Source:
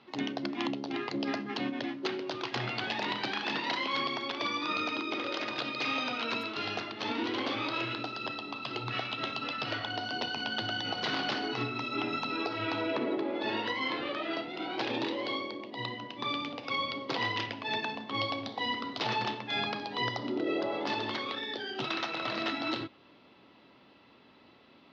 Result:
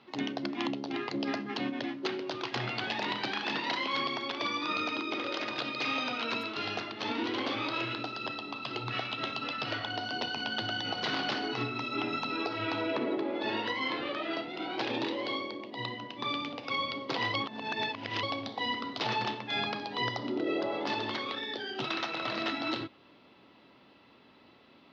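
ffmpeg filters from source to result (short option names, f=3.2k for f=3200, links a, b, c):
-filter_complex "[0:a]asplit=3[a][b][c];[a]atrim=end=17.342[d];[b]atrim=start=17.338:end=18.232,asetpts=PTS-STARTPTS,areverse[e];[c]atrim=start=18.228[f];[d][e]acrossfade=d=0.004:c1=hsin:c2=hsin[g];[g][f]acrossfade=d=0.004:c1=hsin:c2=hsin"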